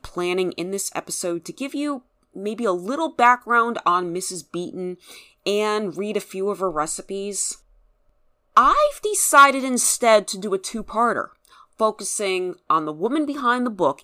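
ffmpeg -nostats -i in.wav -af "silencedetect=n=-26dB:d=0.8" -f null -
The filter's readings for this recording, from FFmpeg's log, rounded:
silence_start: 7.52
silence_end: 8.57 | silence_duration: 1.04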